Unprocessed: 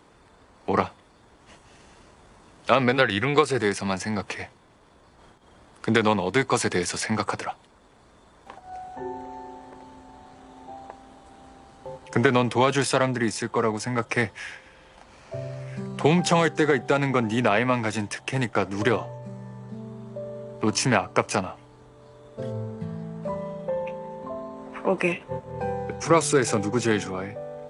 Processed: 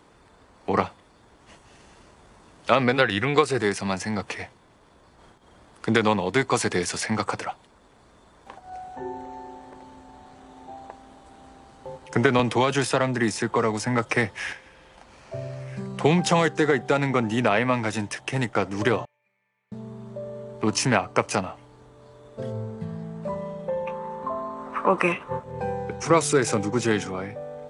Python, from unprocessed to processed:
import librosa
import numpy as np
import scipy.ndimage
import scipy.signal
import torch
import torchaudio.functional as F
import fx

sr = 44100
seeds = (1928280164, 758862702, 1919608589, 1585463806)

y = fx.band_squash(x, sr, depth_pct=70, at=(12.39, 14.53))
y = fx.bandpass_q(y, sr, hz=2300.0, q=14.0, at=(19.05, 19.72))
y = fx.peak_eq(y, sr, hz=1200.0, db=13.5, octaves=0.72, at=(23.87, 25.43))